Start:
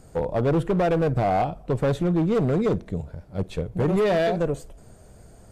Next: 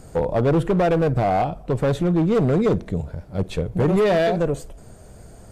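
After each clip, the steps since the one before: in parallel at -1.5 dB: peak limiter -24.5 dBFS, peak gain reduction 8 dB; on the sum: gain riding within 3 dB 2 s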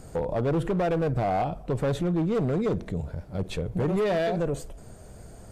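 peak limiter -19 dBFS, peak gain reduction 5.5 dB; trim -2 dB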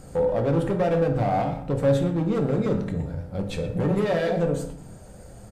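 speakerphone echo 120 ms, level -12 dB; reverberation RT60 0.70 s, pre-delay 3 ms, DRR 3 dB

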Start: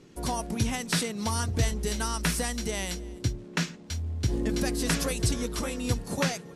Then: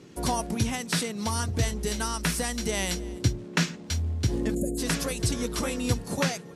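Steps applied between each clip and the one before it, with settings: high-pass 55 Hz; time-frequency box 4.54–4.78 s, 720–6500 Hz -29 dB; gain riding 0.5 s; trim +1.5 dB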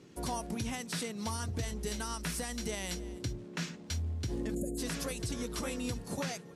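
peak limiter -19.5 dBFS, peak gain reduction 8.5 dB; trim -6.5 dB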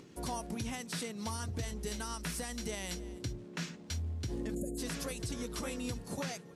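upward compressor, threshold -48 dBFS; trim -2 dB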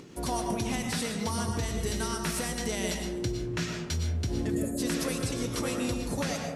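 reverberation RT60 1.1 s, pre-delay 75 ms, DRR 2.5 dB; trim +6 dB

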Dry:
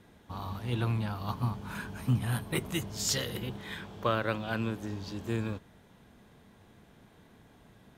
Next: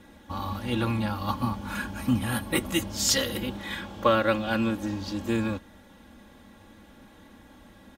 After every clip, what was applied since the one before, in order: comb 3.6 ms, depth 77%; trim +5 dB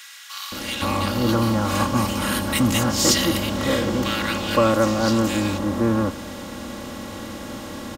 spectral levelling over time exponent 0.6; bands offset in time highs, lows 520 ms, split 1.6 kHz; in parallel at -4 dB: saturation -17 dBFS, distortion -16 dB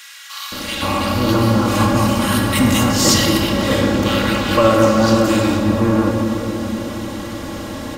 simulated room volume 210 m³, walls hard, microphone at 0.45 m; trim +2.5 dB

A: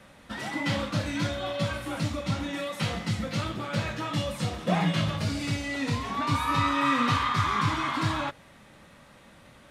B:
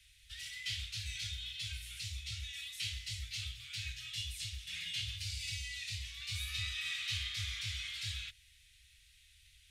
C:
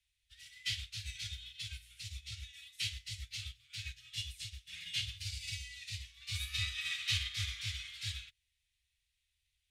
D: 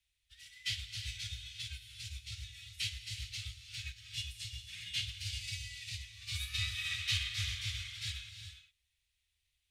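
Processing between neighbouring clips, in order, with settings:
inverse Chebyshev band-stop 210–930 Hz, stop band 60 dB; trim -2.5 dB
upward expansion 2.5:1, over -52 dBFS; trim +5.5 dB
gated-style reverb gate 430 ms rising, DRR 8 dB

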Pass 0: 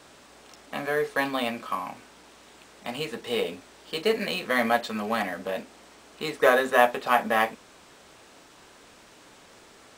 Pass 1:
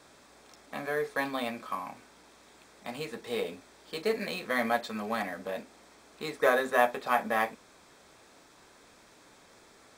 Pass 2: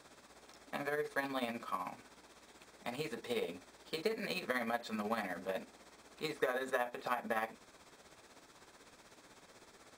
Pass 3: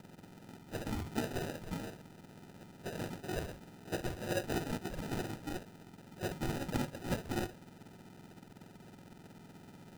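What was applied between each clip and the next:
band-stop 2.9 kHz, Q 7.4; trim -5 dB
compression 6:1, threshold -30 dBFS, peak gain reduction 11.5 dB; tremolo 16 Hz, depth 57%
spectrum inverted on a logarithmic axis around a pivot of 1.2 kHz; sample-and-hold 40×; trim +3 dB

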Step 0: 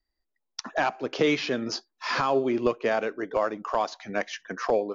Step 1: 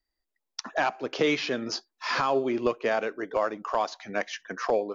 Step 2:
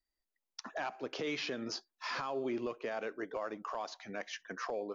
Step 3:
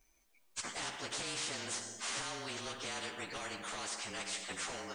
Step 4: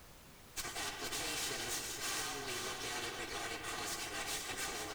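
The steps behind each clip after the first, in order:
bass shelf 330 Hz -4 dB
peak limiter -22 dBFS, peak gain reduction 9 dB; trim -6.5 dB
frequency axis rescaled in octaves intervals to 109%; Schroeder reverb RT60 0.78 s, combs from 32 ms, DRR 14 dB; spectrum-flattening compressor 4:1; trim +1.5 dB
comb filter that takes the minimum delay 2.6 ms; added noise pink -58 dBFS; delay 472 ms -6 dB; trim +1 dB

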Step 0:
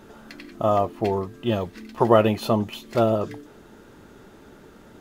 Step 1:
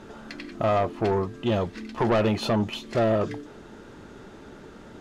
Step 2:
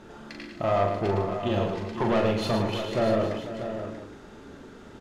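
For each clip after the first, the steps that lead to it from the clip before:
low-pass 7.5 kHz 12 dB/octave; in parallel at +1 dB: peak limiter -14 dBFS, peak gain reduction 11.5 dB; on the sum: saturation -13.5 dBFS, distortion -11 dB; trim -3.5 dB
doubling 40 ms -5 dB; on a send: multi-tap echo 110/268/484/637/817 ms -6/-14.5/-13.5/-9.5/-18 dB; on the sum: trim -3.5 dB

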